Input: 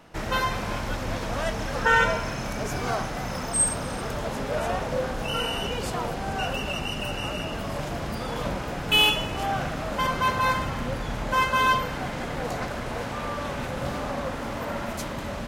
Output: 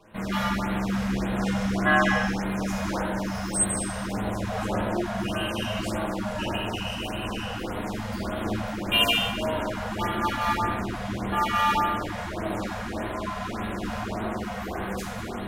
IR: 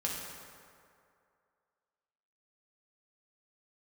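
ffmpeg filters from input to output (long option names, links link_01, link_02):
-filter_complex "[0:a]aeval=exprs='val(0)*sin(2*PI*160*n/s)':channel_layout=same[link_01];[1:a]atrim=start_sample=2205,afade=type=out:start_time=0.41:duration=0.01,atrim=end_sample=18522,asetrate=52920,aresample=44100[link_02];[link_01][link_02]afir=irnorm=-1:irlink=0,afftfilt=real='re*(1-between(b*sr/1024,300*pow(6200/300,0.5+0.5*sin(2*PI*1.7*pts/sr))/1.41,300*pow(6200/300,0.5+0.5*sin(2*PI*1.7*pts/sr))*1.41))':imag='im*(1-between(b*sr/1024,300*pow(6200/300,0.5+0.5*sin(2*PI*1.7*pts/sr))/1.41,300*pow(6200/300,0.5+0.5*sin(2*PI*1.7*pts/sr))*1.41))':win_size=1024:overlap=0.75"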